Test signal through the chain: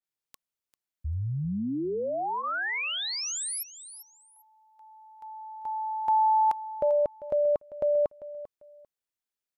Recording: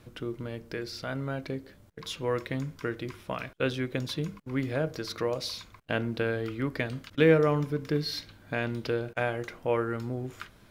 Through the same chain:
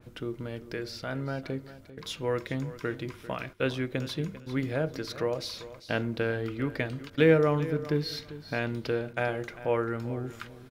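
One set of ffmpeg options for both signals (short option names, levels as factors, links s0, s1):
-filter_complex "[0:a]bandreject=f=1100:w=21,asplit=2[s0][s1];[s1]aecho=0:1:395|790:0.168|0.0353[s2];[s0][s2]amix=inputs=2:normalize=0,adynamicequalizer=threshold=0.00501:dfrequency=2800:dqfactor=0.7:tfrequency=2800:tqfactor=0.7:attack=5:release=100:ratio=0.375:range=1.5:mode=cutabove:tftype=highshelf"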